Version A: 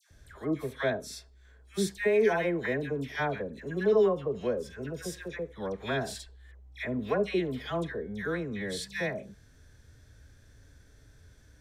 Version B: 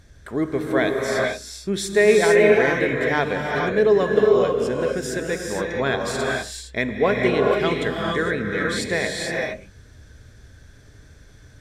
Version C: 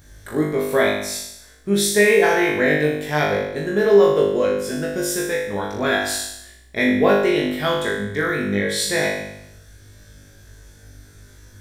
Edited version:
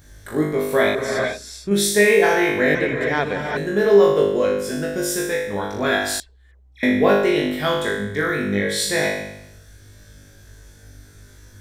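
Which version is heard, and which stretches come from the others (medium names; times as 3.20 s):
C
0.95–1.71 s: from B
2.75–3.57 s: from B
6.20–6.83 s: from A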